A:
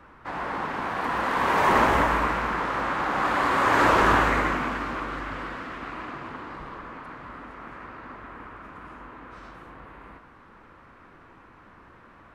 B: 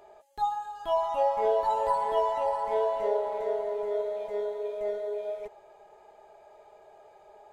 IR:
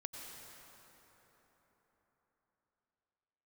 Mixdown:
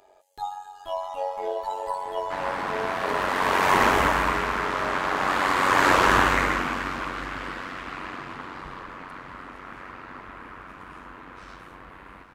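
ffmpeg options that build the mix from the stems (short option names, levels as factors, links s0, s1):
-filter_complex "[0:a]adelay=2050,volume=1.19[s0];[1:a]volume=0.794[s1];[s0][s1]amix=inputs=2:normalize=0,highshelf=f=2400:g=8.5,tremolo=f=93:d=0.621"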